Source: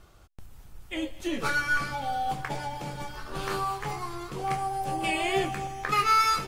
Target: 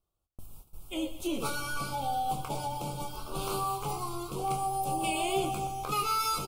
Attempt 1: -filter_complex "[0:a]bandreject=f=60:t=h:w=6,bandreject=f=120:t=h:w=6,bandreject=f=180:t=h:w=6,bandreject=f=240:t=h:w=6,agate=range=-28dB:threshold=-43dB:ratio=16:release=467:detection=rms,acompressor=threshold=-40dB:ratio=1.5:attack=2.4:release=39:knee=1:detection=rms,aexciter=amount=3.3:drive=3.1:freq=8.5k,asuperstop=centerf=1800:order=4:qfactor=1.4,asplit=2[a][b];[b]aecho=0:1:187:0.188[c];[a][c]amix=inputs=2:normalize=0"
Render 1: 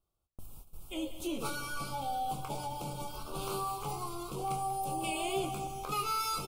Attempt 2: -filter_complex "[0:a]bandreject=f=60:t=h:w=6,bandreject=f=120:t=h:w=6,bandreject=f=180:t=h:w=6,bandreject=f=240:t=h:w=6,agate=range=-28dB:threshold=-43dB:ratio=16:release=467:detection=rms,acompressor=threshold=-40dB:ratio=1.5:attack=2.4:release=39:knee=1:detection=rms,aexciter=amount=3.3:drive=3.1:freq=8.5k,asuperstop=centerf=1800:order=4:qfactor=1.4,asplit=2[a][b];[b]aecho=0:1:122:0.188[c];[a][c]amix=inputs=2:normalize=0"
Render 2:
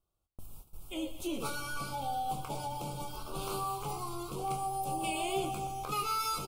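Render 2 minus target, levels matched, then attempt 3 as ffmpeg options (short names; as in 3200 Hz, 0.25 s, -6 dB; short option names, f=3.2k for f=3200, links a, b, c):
compressor: peak gain reduction +3.5 dB
-filter_complex "[0:a]bandreject=f=60:t=h:w=6,bandreject=f=120:t=h:w=6,bandreject=f=180:t=h:w=6,bandreject=f=240:t=h:w=6,agate=range=-28dB:threshold=-43dB:ratio=16:release=467:detection=rms,acompressor=threshold=-29dB:ratio=1.5:attack=2.4:release=39:knee=1:detection=rms,aexciter=amount=3.3:drive=3.1:freq=8.5k,asuperstop=centerf=1800:order=4:qfactor=1.4,asplit=2[a][b];[b]aecho=0:1:122:0.188[c];[a][c]amix=inputs=2:normalize=0"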